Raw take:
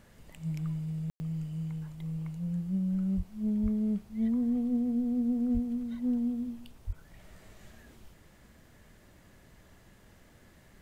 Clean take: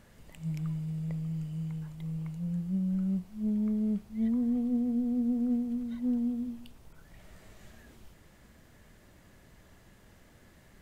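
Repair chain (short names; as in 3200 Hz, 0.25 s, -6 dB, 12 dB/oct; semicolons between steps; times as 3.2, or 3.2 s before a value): de-plosive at 3.16/3.62/5.53/6.86; room tone fill 1.1–1.2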